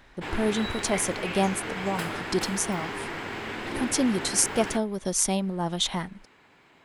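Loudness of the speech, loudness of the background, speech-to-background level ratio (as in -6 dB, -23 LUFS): -27.5 LUFS, -33.5 LUFS, 6.0 dB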